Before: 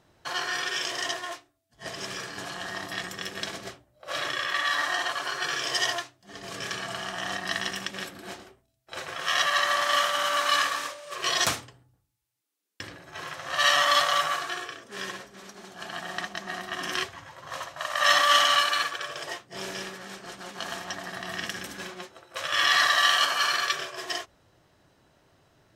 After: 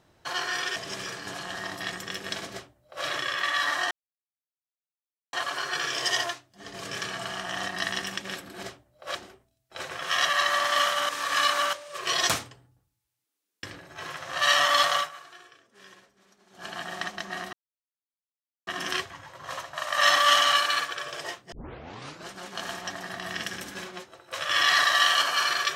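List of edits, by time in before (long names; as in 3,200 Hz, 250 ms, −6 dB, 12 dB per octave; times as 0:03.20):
0:00.76–0:01.87: remove
0:03.64–0:04.16: duplicate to 0:08.32
0:05.02: splice in silence 1.42 s
0:10.26–0:10.90: reverse
0:14.13–0:15.80: duck −16 dB, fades 0.13 s
0:16.70: splice in silence 1.14 s
0:19.55: tape start 0.76 s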